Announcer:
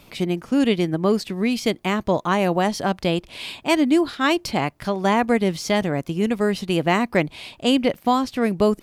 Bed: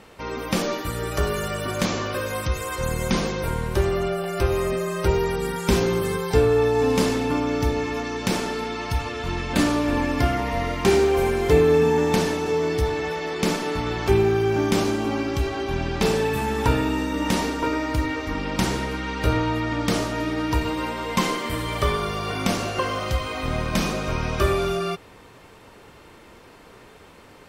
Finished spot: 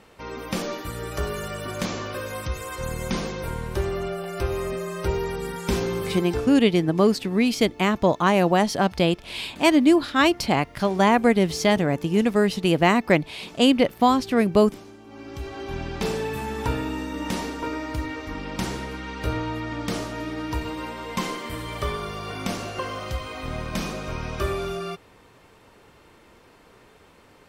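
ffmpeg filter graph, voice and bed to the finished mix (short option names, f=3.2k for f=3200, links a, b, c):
-filter_complex "[0:a]adelay=5950,volume=1dB[a];[1:a]volume=12dB,afade=t=out:st=6.13:d=0.48:silence=0.133352,afade=t=in:st=15.07:d=0.67:silence=0.149624[b];[a][b]amix=inputs=2:normalize=0"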